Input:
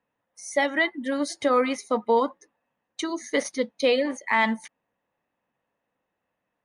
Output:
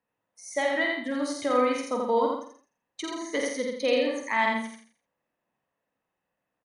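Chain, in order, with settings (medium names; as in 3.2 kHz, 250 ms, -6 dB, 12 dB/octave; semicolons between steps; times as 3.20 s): doubling 48 ms -5.5 dB; feedback delay 84 ms, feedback 32%, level -3 dB; trim -5.5 dB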